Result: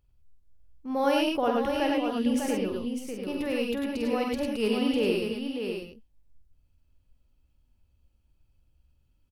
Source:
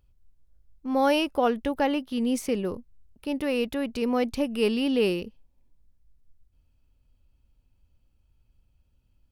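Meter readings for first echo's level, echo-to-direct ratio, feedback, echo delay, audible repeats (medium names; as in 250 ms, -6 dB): -6.5 dB, 1.5 dB, no regular repeats, 47 ms, 5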